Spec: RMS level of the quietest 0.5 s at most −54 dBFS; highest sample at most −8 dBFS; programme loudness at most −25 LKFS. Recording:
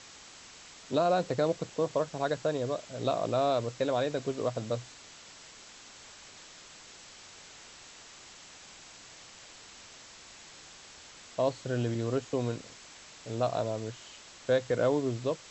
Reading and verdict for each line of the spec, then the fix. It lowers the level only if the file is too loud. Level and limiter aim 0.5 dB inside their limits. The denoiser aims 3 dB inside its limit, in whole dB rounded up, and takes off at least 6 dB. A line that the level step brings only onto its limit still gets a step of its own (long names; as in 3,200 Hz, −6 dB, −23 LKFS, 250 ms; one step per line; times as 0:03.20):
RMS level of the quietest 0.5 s −51 dBFS: out of spec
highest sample −14.0 dBFS: in spec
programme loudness −31.5 LKFS: in spec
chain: broadband denoise 6 dB, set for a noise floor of −51 dBFS